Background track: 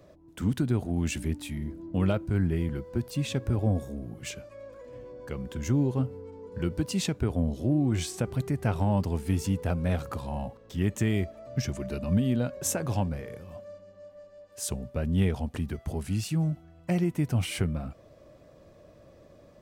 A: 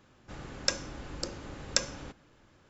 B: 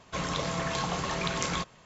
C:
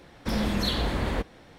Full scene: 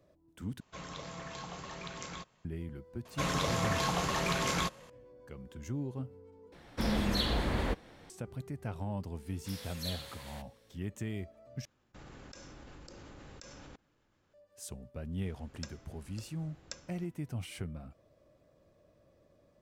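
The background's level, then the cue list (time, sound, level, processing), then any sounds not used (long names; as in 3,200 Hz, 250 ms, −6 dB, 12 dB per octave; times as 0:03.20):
background track −12 dB
0:00.60: overwrite with B −13 dB
0:03.05: mix in B −0.5 dB + variable-slope delta modulation 64 kbit/s
0:06.52: overwrite with C −4 dB
0:09.20: mix in C −5.5 dB + first difference
0:11.65: overwrite with A −5 dB + output level in coarse steps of 23 dB
0:14.95: mix in A −17.5 dB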